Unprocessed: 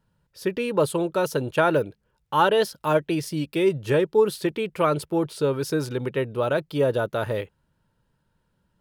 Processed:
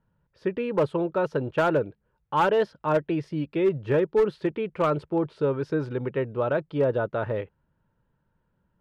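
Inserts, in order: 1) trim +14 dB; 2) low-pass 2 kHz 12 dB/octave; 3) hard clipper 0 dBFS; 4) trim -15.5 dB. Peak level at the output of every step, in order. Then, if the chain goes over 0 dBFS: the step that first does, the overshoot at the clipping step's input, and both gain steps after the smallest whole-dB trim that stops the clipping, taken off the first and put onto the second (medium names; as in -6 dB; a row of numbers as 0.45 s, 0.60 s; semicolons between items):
+7.5 dBFS, +6.5 dBFS, 0.0 dBFS, -15.5 dBFS; step 1, 6.5 dB; step 1 +7 dB, step 4 -8.5 dB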